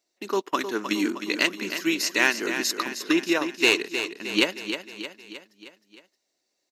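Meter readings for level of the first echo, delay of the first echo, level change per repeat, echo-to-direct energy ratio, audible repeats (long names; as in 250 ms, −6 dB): −9.0 dB, 311 ms, −5.0 dB, −7.5 dB, 5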